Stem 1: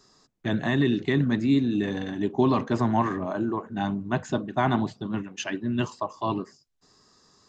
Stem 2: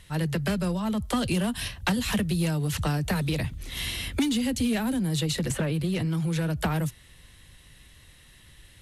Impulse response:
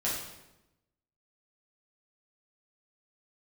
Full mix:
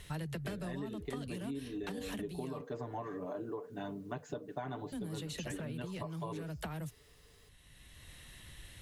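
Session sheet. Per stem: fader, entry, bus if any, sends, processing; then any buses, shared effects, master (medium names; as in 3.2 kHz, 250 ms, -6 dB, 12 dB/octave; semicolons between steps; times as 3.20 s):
-13.5 dB, 0.00 s, no send, word length cut 10-bit, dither none; peaking EQ 470 Hz +14.5 dB 0.45 oct; comb 6.9 ms, depth 86%
0.0 dB, 0.00 s, muted 2.61–4.92 s, no send, band-stop 4.9 kHz, Q 17; auto duck -11 dB, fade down 1.75 s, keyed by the first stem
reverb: none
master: peaking EQ 670 Hz +3 dB 0.23 oct; compression 10:1, threshold -37 dBFS, peak gain reduction 14.5 dB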